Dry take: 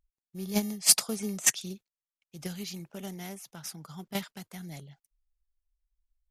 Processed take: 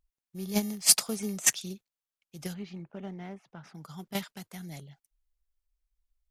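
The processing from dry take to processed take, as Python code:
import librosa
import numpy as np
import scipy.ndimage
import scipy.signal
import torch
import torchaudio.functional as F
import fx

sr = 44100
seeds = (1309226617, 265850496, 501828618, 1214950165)

y = fx.dmg_crackle(x, sr, seeds[0], per_s=64.0, level_db=-39.0, at=(0.66, 1.58), fade=0.02)
y = fx.lowpass(y, sr, hz=1900.0, slope=12, at=(2.53, 3.74), fade=0.02)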